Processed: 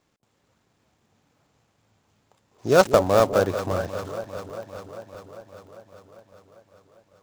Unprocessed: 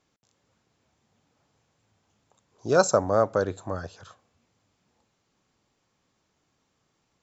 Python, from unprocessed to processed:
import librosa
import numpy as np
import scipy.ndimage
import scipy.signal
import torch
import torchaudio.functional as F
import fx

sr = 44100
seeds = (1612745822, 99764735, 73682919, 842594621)

y = fx.dead_time(x, sr, dead_ms=0.12)
y = fx.echo_alternate(y, sr, ms=199, hz=830.0, feedback_pct=82, wet_db=-11.0)
y = fx.buffer_crackle(y, sr, first_s=0.6, period_s=0.13, block=64, kind='zero')
y = y * librosa.db_to_amplitude(4.0)